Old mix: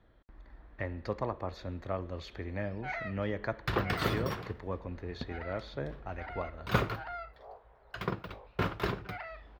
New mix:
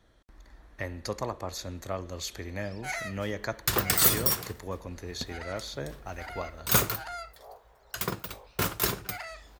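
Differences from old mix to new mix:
first sound: remove LPF 4300 Hz 12 dB/oct; master: remove air absorption 350 m

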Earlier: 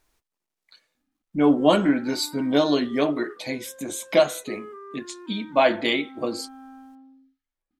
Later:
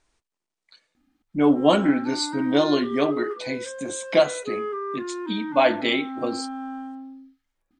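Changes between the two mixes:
speech: add brick-wall FIR low-pass 9800 Hz; background +11.0 dB

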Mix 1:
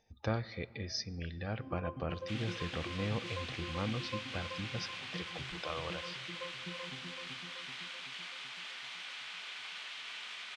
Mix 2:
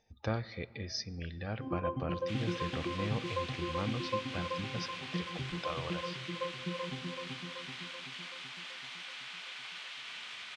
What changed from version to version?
first sound +8.0 dB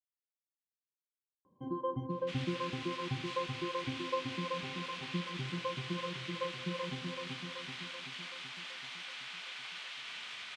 speech: muted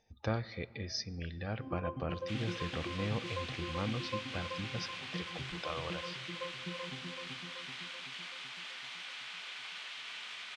speech: unmuted; first sound -5.0 dB

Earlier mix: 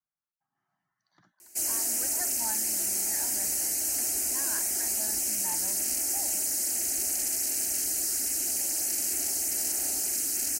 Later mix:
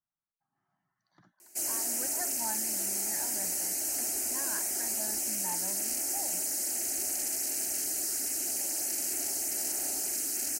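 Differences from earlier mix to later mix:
background: add low shelf 200 Hz -12 dB; master: add tilt shelf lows +3.5 dB, about 1100 Hz

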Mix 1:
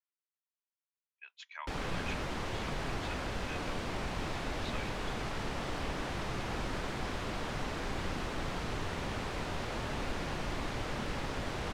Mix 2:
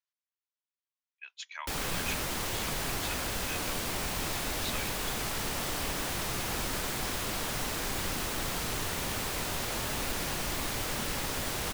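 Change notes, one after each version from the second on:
master: remove tape spacing loss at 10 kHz 21 dB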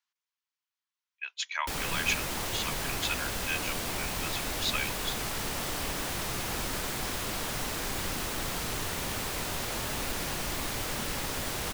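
speech +9.0 dB

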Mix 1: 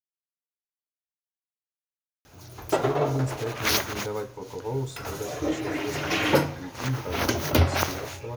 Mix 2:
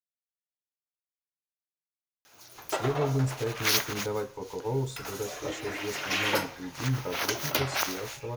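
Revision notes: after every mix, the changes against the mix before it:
background: add HPF 1300 Hz 6 dB/oct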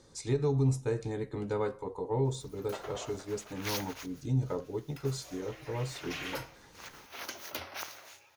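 speech: entry -2.55 s; background -11.5 dB

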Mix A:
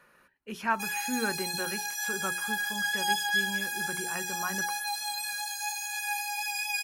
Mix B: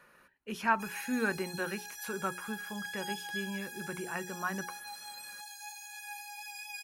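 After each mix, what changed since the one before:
background -12.0 dB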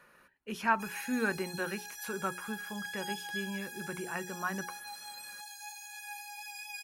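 none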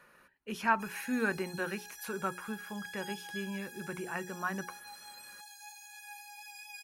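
background -4.5 dB

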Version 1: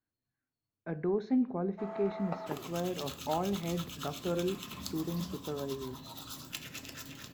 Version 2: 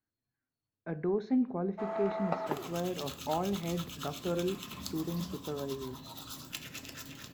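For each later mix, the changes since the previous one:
first sound +5.5 dB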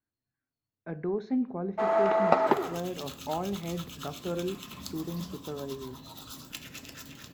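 first sound +11.5 dB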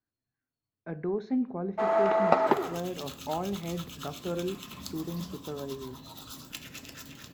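none

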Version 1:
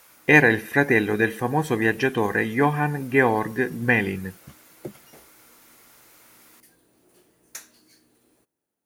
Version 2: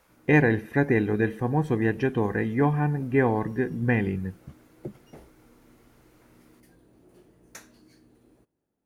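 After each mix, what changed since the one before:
speech -6.5 dB; master: add tilt -3 dB/oct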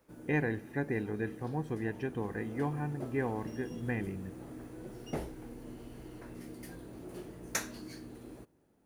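speech -11.5 dB; background +11.0 dB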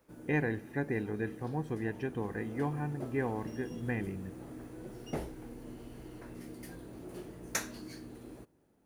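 none

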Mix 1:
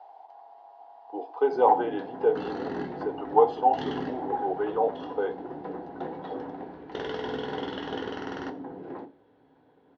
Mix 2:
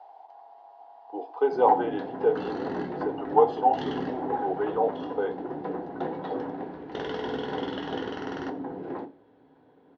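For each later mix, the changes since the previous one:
first sound +4.0 dB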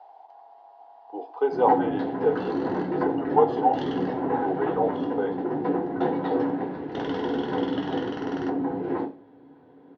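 first sound: send +10.0 dB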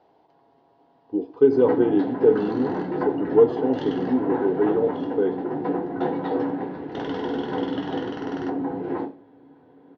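speech: remove resonant high-pass 770 Hz, resonance Q 7

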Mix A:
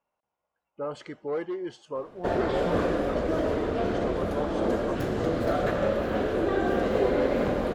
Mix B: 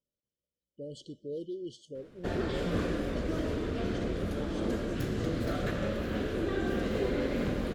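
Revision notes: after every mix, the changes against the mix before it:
speech: add brick-wall FIR band-stop 620–2900 Hz; master: add bell 750 Hz -12.5 dB 1.9 oct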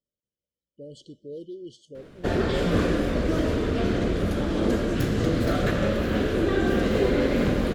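background +8.5 dB

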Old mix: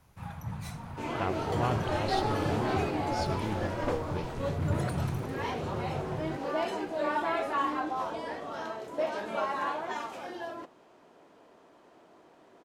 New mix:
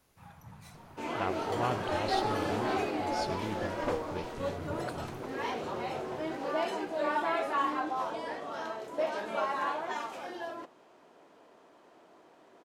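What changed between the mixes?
first sound -9.0 dB; master: add low shelf 170 Hz -7.5 dB

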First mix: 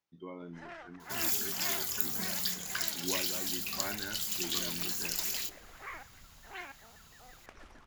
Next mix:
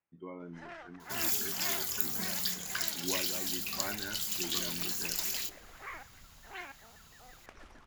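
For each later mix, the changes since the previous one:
speech: add steep low-pass 2700 Hz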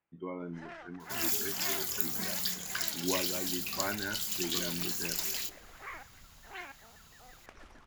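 speech +5.0 dB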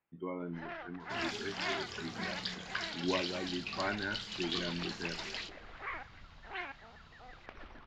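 first sound +3.0 dB; master: add LPF 4300 Hz 24 dB/oct

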